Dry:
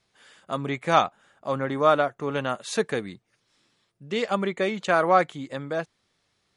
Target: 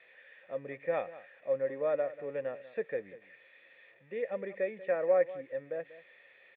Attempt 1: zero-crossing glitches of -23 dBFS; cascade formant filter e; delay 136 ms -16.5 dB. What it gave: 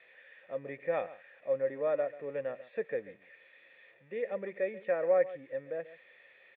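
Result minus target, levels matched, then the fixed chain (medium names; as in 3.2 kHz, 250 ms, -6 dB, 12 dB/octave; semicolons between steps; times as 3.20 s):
echo 53 ms early
zero-crossing glitches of -23 dBFS; cascade formant filter e; delay 189 ms -16.5 dB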